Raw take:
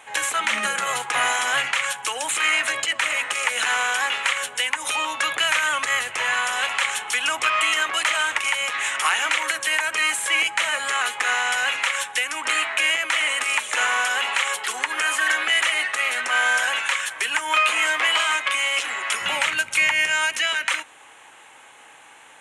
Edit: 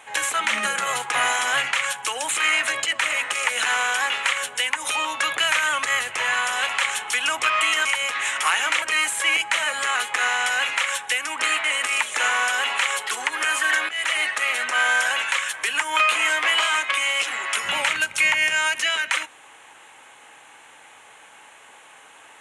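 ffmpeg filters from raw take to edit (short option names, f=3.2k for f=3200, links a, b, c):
-filter_complex "[0:a]asplit=5[a][b][c][d][e];[a]atrim=end=7.852[f];[b]atrim=start=8.438:end=9.412[g];[c]atrim=start=9.878:end=12.702[h];[d]atrim=start=13.208:end=15.46,asetpts=PTS-STARTPTS,afade=t=out:st=2.248:d=0.004:c=hsin:silence=0.16788[i];[e]atrim=start=15.46,asetpts=PTS-STARTPTS,afade=t=in:d=0.28:silence=0.16788[j];[f][g]acrossfade=d=0.004:c1=hsin:c2=hsin[k];[k][h]acrossfade=d=0.004:c1=hsin:c2=hsin[l];[i][j]concat=n=2:v=0:a=1[m];[l][m]acrossfade=d=0.004:c1=hsin:c2=hsin"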